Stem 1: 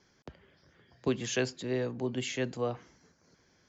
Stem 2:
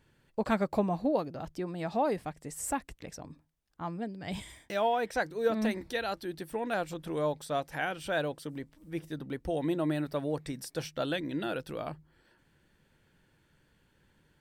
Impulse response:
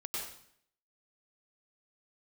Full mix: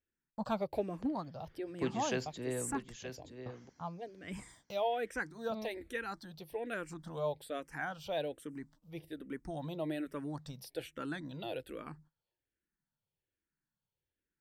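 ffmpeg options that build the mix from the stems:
-filter_complex "[0:a]adelay=750,volume=-6dB,asplit=3[a][b][c];[a]atrim=end=2.77,asetpts=PTS-STARTPTS,afade=t=out:st=2.766:d=0.004:c=hsin[d];[b]atrim=start=2.77:end=3.46,asetpts=PTS-STARTPTS,volume=0[e];[c]atrim=start=3.46,asetpts=PTS-STARTPTS,afade=t=in:d=0.004:c=hsin[f];[d][e][f]concat=n=3:v=0:a=1,asplit=2[g][h];[h]volume=-10dB[i];[1:a]agate=range=-20dB:threshold=-54dB:ratio=16:detection=peak,asplit=2[j][k];[k]afreqshift=-1.2[l];[j][l]amix=inputs=2:normalize=1,volume=-3.5dB[m];[i]aecho=0:1:924:1[n];[g][m][n]amix=inputs=3:normalize=0"

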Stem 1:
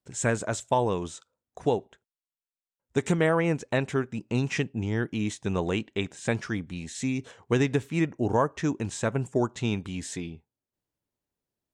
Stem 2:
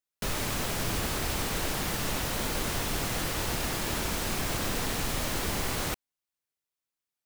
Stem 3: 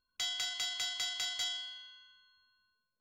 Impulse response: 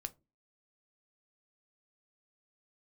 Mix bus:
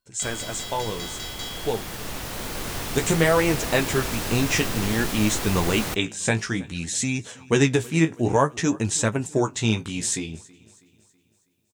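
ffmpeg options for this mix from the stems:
-filter_complex "[0:a]highshelf=f=3.7k:g=12,flanger=delay=8.9:depth=9.6:regen=32:speed=0.56:shape=sinusoidal,volume=-1.5dB,asplit=2[a][b];[b]volume=-23dB[c];[1:a]volume=-10dB,asplit=2[d][e];[e]volume=-5dB[f];[2:a]volume=-1.5dB[g];[3:a]atrim=start_sample=2205[h];[f][h]afir=irnorm=-1:irlink=0[i];[c]aecho=0:1:324|648|972|1296|1620|1944|2268:1|0.47|0.221|0.104|0.0488|0.0229|0.0108[j];[a][d][g][i][j]amix=inputs=5:normalize=0,dynaudnorm=f=680:g=7:m=9.5dB"

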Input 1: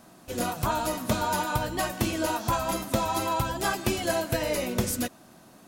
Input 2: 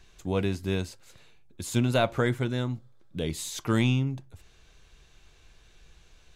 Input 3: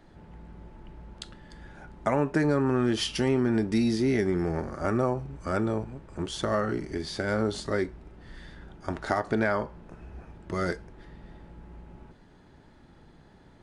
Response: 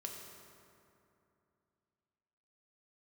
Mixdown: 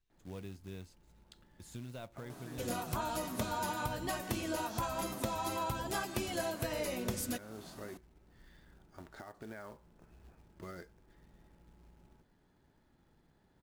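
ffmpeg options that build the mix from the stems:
-filter_complex "[0:a]adelay=2300,volume=0dB[a];[1:a]agate=range=-12dB:threshold=-51dB:ratio=16:detection=peak,lowshelf=f=300:g=4.5,volume=-19dB,asplit=2[b][c];[2:a]adelay=100,volume=-15dB[d];[c]apad=whole_len=605243[e];[d][e]sidechaincompress=threshold=-46dB:ratio=8:attack=12:release=1180[f];[b][f]amix=inputs=2:normalize=0,acrusher=bits=4:mode=log:mix=0:aa=0.000001,alimiter=level_in=10.5dB:limit=-24dB:level=0:latency=1:release=378,volume=-10.5dB,volume=0dB[g];[a][g]amix=inputs=2:normalize=0,acompressor=threshold=-41dB:ratio=2"

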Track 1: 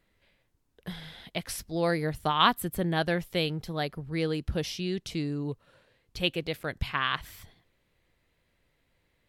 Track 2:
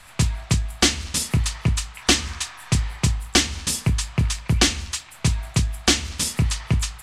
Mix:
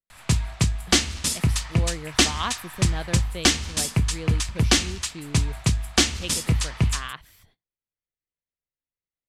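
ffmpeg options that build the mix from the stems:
-filter_complex "[0:a]agate=range=-23dB:threshold=-55dB:ratio=16:detection=peak,volume=-6.5dB[a];[1:a]adelay=100,volume=-1dB[b];[a][b]amix=inputs=2:normalize=0"

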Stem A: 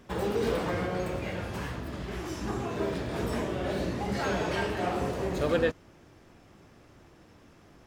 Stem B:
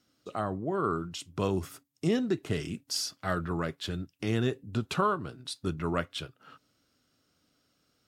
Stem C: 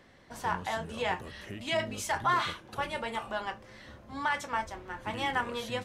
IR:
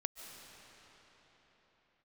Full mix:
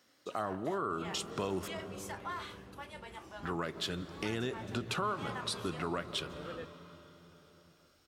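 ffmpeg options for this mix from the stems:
-filter_complex "[0:a]adelay=950,volume=-19.5dB[a];[1:a]volume=1.5dB,asplit=3[b][c][d];[b]atrim=end=1.68,asetpts=PTS-STARTPTS,afade=t=out:st=1.676:d=0.004:c=hsin[e];[c]atrim=start=1.68:end=3.43,asetpts=PTS-STARTPTS,volume=0[f];[d]atrim=start=3.43,asetpts=PTS-STARTPTS,afade=t=in:d=0.004:c=hsin[g];[e][f][g]concat=n=3:v=0:a=1,asplit=2[h][i];[i]volume=-10dB[j];[2:a]highshelf=f=11k:g=10,volume=-13dB[k];[h][k]amix=inputs=2:normalize=0,highpass=f=450:p=1,alimiter=level_in=1dB:limit=-24dB:level=0:latency=1:release=104,volume=-1dB,volume=0dB[l];[3:a]atrim=start_sample=2205[m];[j][m]afir=irnorm=-1:irlink=0[n];[a][l][n]amix=inputs=3:normalize=0,acompressor=threshold=-33dB:ratio=2"

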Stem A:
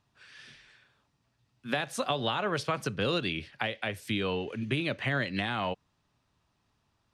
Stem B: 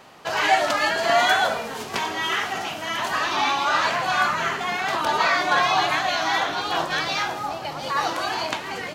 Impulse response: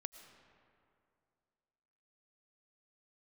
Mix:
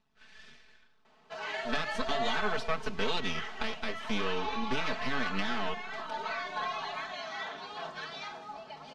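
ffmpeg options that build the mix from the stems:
-filter_complex "[0:a]aeval=exprs='max(val(0),0)':c=same,volume=-2dB,asplit=2[a][b];[b]volume=-19.5dB[c];[1:a]adelay=1050,volume=-18.5dB[d];[2:a]atrim=start_sample=2205[e];[c][e]afir=irnorm=-1:irlink=0[f];[a][d][f]amix=inputs=3:normalize=0,lowpass=5.2k,aecho=1:1:4.6:0.98"

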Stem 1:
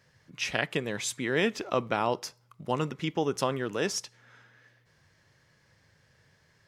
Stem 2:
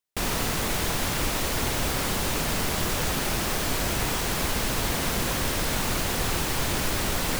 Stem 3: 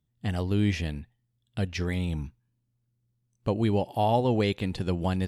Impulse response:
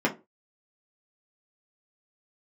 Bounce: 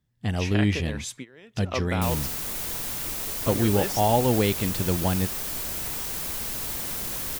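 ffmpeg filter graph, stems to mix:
-filter_complex "[0:a]volume=-2.5dB[a];[1:a]aemphasis=mode=production:type=50kf,adelay=1850,volume=-11.5dB[b];[2:a]volume=2.5dB,asplit=2[c][d];[d]apad=whole_len=294252[e];[a][e]sidechaingate=range=-21dB:threshold=-60dB:ratio=16:detection=peak[f];[f][b][c]amix=inputs=3:normalize=0"

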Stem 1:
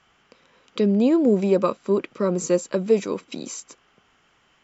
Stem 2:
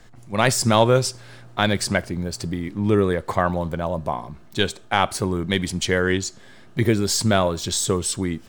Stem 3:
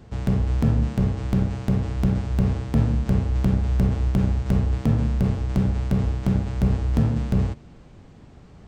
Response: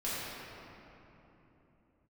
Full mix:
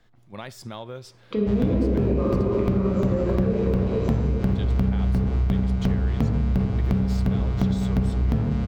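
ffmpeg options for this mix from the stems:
-filter_complex "[0:a]equalizer=f=8.4k:w=0.44:g=-12,dynaudnorm=f=480:g=3:m=11.5dB,adelay=550,volume=-3.5dB,asplit=2[a][b];[b]volume=-8.5dB[c];[1:a]equalizer=f=3.5k:w=5.4:g=5,volume=-11.5dB,asplit=2[d][e];[2:a]adelay=1350,volume=2dB,asplit=2[f][g];[g]volume=-14.5dB[h];[e]apad=whole_len=228664[i];[a][i]sidechaincompress=threshold=-52dB:ratio=8:attack=16:release=226[j];[j][d]amix=inputs=2:normalize=0,acompressor=threshold=-34dB:ratio=4,volume=0dB[k];[3:a]atrim=start_sample=2205[l];[c][h]amix=inputs=2:normalize=0[m];[m][l]afir=irnorm=-1:irlink=0[n];[f][k][n]amix=inputs=3:normalize=0,equalizer=f=8.4k:w=1:g=-10,acompressor=threshold=-18dB:ratio=6"

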